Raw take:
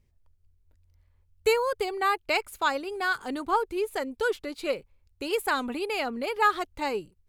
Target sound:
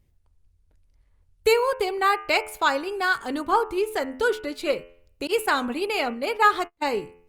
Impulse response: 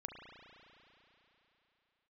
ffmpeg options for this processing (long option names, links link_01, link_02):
-filter_complex "[0:a]bandreject=frequency=86.62:width_type=h:width=4,bandreject=frequency=173.24:width_type=h:width=4,bandreject=frequency=259.86:width_type=h:width=4,bandreject=frequency=346.48:width_type=h:width=4,bandreject=frequency=433.1:width_type=h:width=4,bandreject=frequency=519.72:width_type=h:width=4,bandreject=frequency=606.34:width_type=h:width=4,bandreject=frequency=692.96:width_type=h:width=4,bandreject=frequency=779.58:width_type=h:width=4,bandreject=frequency=866.2:width_type=h:width=4,bandreject=frequency=952.82:width_type=h:width=4,bandreject=frequency=1039.44:width_type=h:width=4,bandreject=frequency=1126.06:width_type=h:width=4,bandreject=frequency=1212.68:width_type=h:width=4,bandreject=frequency=1299.3:width_type=h:width=4,bandreject=frequency=1385.92:width_type=h:width=4,bandreject=frequency=1472.54:width_type=h:width=4,bandreject=frequency=1559.16:width_type=h:width=4,bandreject=frequency=1645.78:width_type=h:width=4,bandreject=frequency=1732.4:width_type=h:width=4,bandreject=frequency=1819.02:width_type=h:width=4,bandreject=frequency=1905.64:width_type=h:width=4,bandreject=frequency=1992.26:width_type=h:width=4,bandreject=frequency=2078.88:width_type=h:width=4,bandreject=frequency=2165.5:width_type=h:width=4,bandreject=frequency=2252.12:width_type=h:width=4,bandreject=frequency=2338.74:width_type=h:width=4,bandreject=frequency=2425.36:width_type=h:width=4,bandreject=frequency=2511.98:width_type=h:width=4,bandreject=frequency=2598.6:width_type=h:width=4,bandreject=frequency=2685.22:width_type=h:width=4,bandreject=frequency=2771.84:width_type=h:width=4,bandreject=frequency=2858.46:width_type=h:width=4,bandreject=frequency=2945.08:width_type=h:width=4,bandreject=frequency=3031.7:width_type=h:width=4,asettb=1/sr,asplit=3[link_01][link_02][link_03];[link_01]atrim=end=5.274[link_04];[link_02]atrim=start=5.27:end=6.95,asetpts=PTS-STARTPTS,afade=type=in:duration=0.004:curve=qsin,afade=type=out:start_time=1.676:duration=0.004:curve=qsin,agate=range=-38dB:threshold=-33dB:ratio=16:detection=peak[link_05];[link_03]atrim=start=6.946[link_06];[link_04][link_05]acrossfade=duration=0.004:curve1=hsin:curve2=qsin[link_07];[link_07][link_06]acrossfade=duration=0.004:curve1=qsin:curve2=hsin,volume=4.5dB" -ar 48000 -c:a libopus -b:a 32k